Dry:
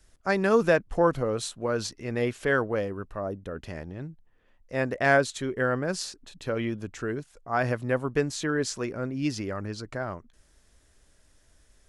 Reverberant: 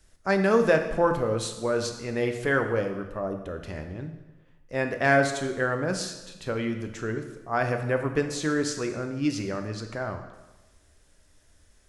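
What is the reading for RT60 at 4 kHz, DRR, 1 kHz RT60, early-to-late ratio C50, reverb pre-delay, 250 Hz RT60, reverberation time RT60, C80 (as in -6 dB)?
1.0 s, 5.5 dB, 1.1 s, 8.0 dB, 5 ms, 1.1 s, 1.1 s, 10.0 dB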